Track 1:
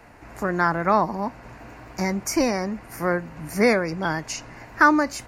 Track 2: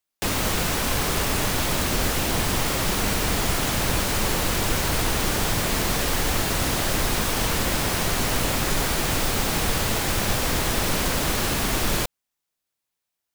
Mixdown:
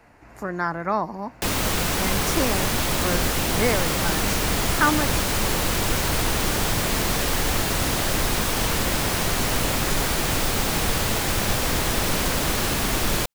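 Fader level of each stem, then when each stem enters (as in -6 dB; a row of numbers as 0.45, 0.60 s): -4.5, +0.5 dB; 0.00, 1.20 s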